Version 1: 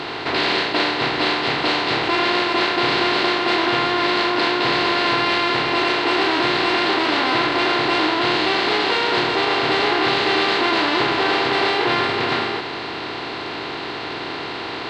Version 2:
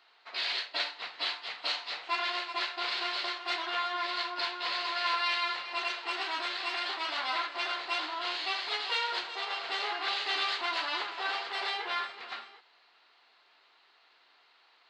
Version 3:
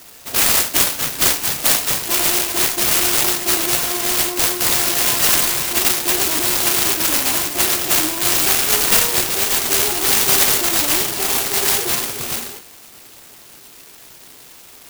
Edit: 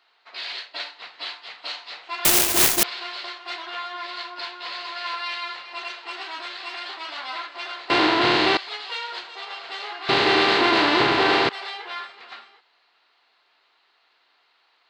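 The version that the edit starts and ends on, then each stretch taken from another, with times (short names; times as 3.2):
2
2.25–2.83 from 3
7.9–8.57 from 1
10.09–11.49 from 1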